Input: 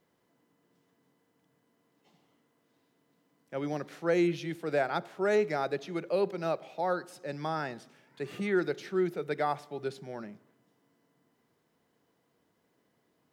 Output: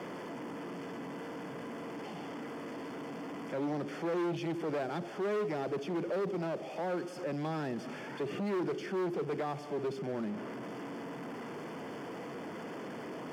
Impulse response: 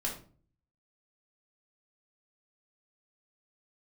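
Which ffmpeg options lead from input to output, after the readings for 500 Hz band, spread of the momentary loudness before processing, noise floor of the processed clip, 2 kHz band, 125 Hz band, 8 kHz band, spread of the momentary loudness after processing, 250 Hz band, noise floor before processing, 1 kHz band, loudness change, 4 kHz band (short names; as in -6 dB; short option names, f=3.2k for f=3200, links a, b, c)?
-3.5 dB, 14 LU, -44 dBFS, -5.0 dB, 0.0 dB, n/a, 9 LU, -0.5 dB, -74 dBFS, -3.5 dB, -5.5 dB, -2.0 dB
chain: -filter_complex "[0:a]aeval=exprs='val(0)+0.5*0.0112*sgn(val(0))':c=same,acrossover=split=410|3000[a][b][c];[b]acompressor=threshold=-48dB:ratio=2.5[d];[a][d][c]amix=inputs=3:normalize=0,aemphasis=mode=reproduction:type=50fm,asplit=2[e][f];[f]alimiter=level_in=5.5dB:limit=-24dB:level=0:latency=1:release=25,volume=-5.5dB,volume=-1dB[g];[e][g]amix=inputs=2:normalize=0,asuperstop=centerf=3900:order=12:qfactor=5.8,highshelf=f=2.8k:g=-10,volume=30dB,asoftclip=hard,volume=-30dB,highpass=190"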